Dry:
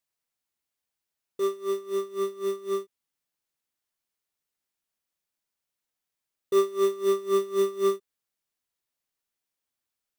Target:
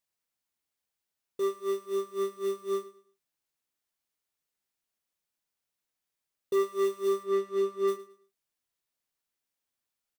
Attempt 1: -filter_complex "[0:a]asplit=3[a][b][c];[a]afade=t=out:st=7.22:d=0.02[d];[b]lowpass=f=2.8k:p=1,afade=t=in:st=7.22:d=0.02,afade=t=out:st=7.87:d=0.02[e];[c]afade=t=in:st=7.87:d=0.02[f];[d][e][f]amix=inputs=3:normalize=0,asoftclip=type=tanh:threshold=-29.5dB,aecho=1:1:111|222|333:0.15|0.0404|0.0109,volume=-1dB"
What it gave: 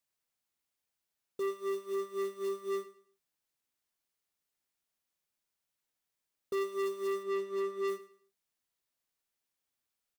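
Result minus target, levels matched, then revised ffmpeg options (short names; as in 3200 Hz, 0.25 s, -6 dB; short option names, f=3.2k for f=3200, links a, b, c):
soft clip: distortion +9 dB
-filter_complex "[0:a]asplit=3[a][b][c];[a]afade=t=out:st=7.22:d=0.02[d];[b]lowpass=f=2.8k:p=1,afade=t=in:st=7.22:d=0.02,afade=t=out:st=7.87:d=0.02[e];[c]afade=t=in:st=7.87:d=0.02[f];[d][e][f]amix=inputs=3:normalize=0,asoftclip=type=tanh:threshold=-20dB,aecho=1:1:111|222|333:0.15|0.0404|0.0109,volume=-1dB"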